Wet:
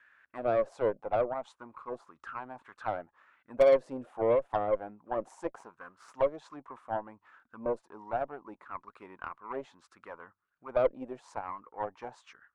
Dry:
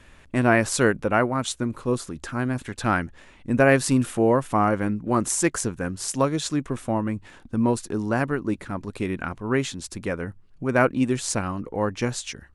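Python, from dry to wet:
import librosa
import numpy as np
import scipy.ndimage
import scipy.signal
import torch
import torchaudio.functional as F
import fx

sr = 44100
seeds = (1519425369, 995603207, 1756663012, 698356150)

y = fx.halfwave_gain(x, sr, db=-7.0, at=(5.47, 6.15))
y = fx.auto_wah(y, sr, base_hz=550.0, top_hz=1600.0, q=5.4, full_db=-16.5, direction='down')
y = fx.cheby_harmonics(y, sr, harmonics=(4, 8), levels_db=(-21, -31), full_scale_db=-14.5)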